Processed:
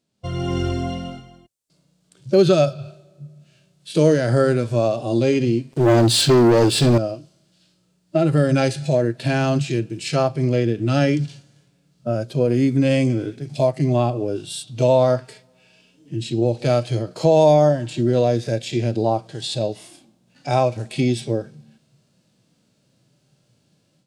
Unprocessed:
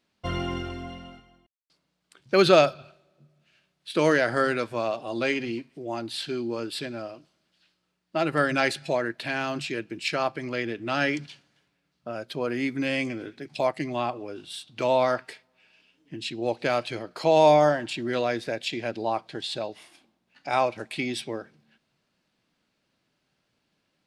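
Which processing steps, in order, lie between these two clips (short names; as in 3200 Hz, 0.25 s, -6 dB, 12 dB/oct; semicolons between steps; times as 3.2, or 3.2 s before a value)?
harmonic-percussive split percussive -15 dB; ten-band EQ 125 Hz +12 dB, 500 Hz +5 dB, 1000 Hz -4 dB, 2000 Hz -6 dB, 8000 Hz +9 dB; compressor 2:1, threshold -28 dBFS, peak gain reduction 9.5 dB; 5.72–6.98 sample leveller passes 3; AGC gain up to 11.5 dB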